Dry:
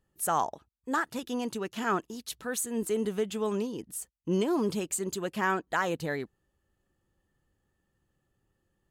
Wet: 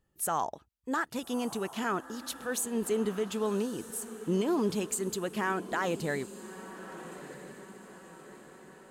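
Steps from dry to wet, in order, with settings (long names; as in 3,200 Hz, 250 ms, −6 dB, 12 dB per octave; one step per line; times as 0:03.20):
brickwall limiter −20.5 dBFS, peak gain reduction 4 dB
feedback delay with all-pass diffusion 1,262 ms, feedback 50%, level −13.5 dB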